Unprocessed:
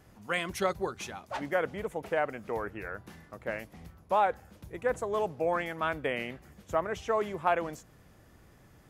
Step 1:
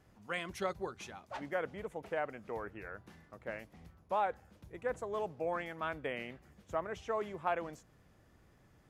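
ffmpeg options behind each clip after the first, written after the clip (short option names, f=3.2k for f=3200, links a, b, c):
-af "highshelf=f=11k:g=-9.5,volume=-7dB"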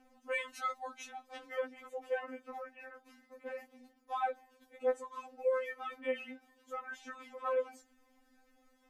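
-af "aphaser=in_gain=1:out_gain=1:delay=2.4:decay=0.33:speed=0.27:type=triangular,afftfilt=real='re*3.46*eq(mod(b,12),0)':imag='im*3.46*eq(mod(b,12),0)':win_size=2048:overlap=0.75,volume=1dB"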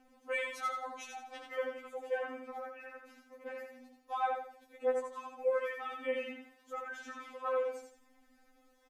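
-af "aecho=1:1:84|168|252|336:0.596|0.203|0.0689|0.0234"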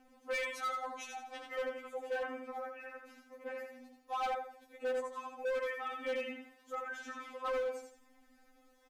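-af "asoftclip=type=hard:threshold=-33dB,volume=1dB"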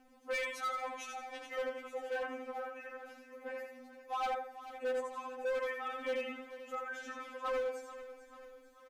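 -af "aecho=1:1:439|878|1317|1756|2195:0.2|0.108|0.0582|0.0314|0.017"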